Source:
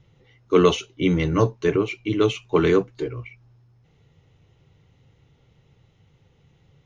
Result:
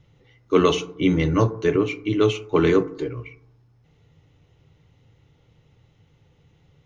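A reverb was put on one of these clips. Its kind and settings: FDN reverb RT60 0.69 s, low-frequency decay 1.2×, high-frequency decay 0.3×, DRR 11.5 dB

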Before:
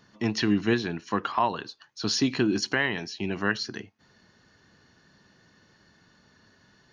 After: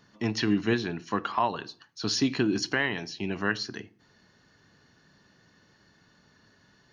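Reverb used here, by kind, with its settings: shoebox room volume 500 m³, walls furnished, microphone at 0.31 m; gain -1.5 dB

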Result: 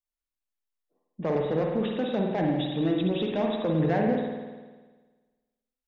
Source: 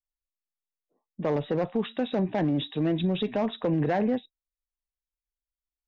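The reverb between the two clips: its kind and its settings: spring tank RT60 1.4 s, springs 50 ms, chirp 40 ms, DRR 0.5 dB; gain -2 dB

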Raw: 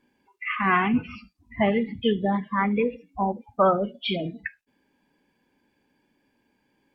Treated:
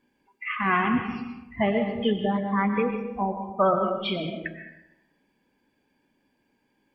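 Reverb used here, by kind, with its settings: digital reverb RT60 1 s, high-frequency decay 0.55×, pre-delay 80 ms, DRR 5.5 dB; gain -2 dB

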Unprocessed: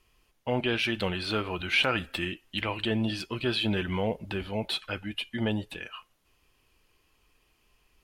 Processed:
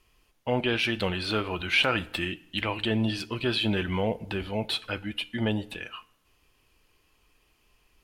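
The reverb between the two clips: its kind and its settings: FDN reverb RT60 0.83 s, low-frequency decay 1×, high-frequency decay 0.8×, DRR 18 dB; gain +1.5 dB

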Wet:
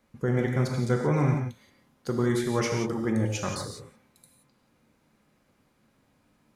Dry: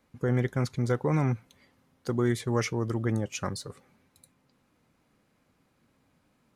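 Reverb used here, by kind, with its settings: non-linear reverb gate 0.2 s flat, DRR 1.5 dB

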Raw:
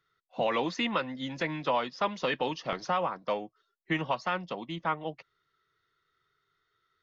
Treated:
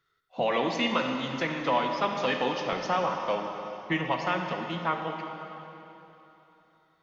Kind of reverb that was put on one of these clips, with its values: plate-style reverb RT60 3.3 s, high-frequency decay 0.9×, DRR 2.5 dB; gain +1 dB

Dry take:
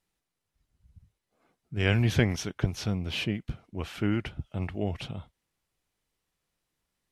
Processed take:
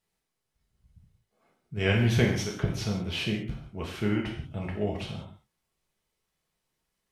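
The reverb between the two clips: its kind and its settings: non-linear reverb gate 0.21 s falling, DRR -1.5 dB; gain -2.5 dB

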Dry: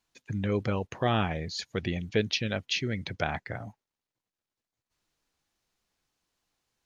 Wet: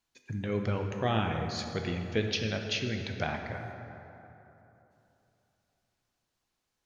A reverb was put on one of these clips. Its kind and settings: plate-style reverb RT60 3.2 s, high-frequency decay 0.5×, DRR 3.5 dB; gain -3.5 dB

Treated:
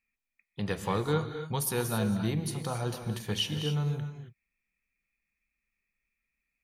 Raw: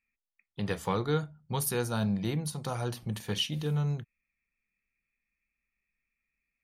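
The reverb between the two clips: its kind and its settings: non-linear reverb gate 0.3 s rising, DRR 7 dB

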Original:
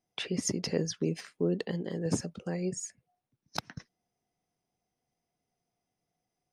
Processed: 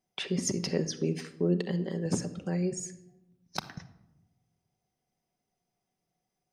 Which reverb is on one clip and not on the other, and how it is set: shoebox room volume 3200 m³, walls furnished, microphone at 1.1 m

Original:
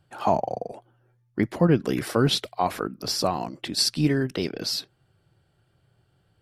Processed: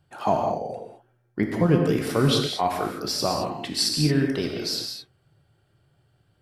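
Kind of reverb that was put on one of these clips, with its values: non-linear reverb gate 0.24 s flat, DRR 1.5 dB; gain -1.5 dB

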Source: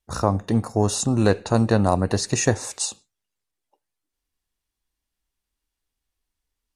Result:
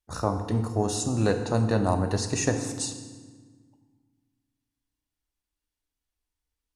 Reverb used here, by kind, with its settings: FDN reverb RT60 1.5 s, low-frequency decay 1.55×, high-frequency decay 0.75×, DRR 6 dB; gain -6 dB

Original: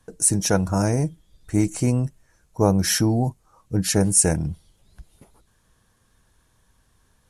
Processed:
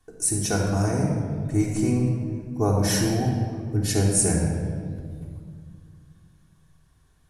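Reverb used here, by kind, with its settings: shoebox room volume 3600 m³, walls mixed, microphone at 3.4 m; gain -7 dB

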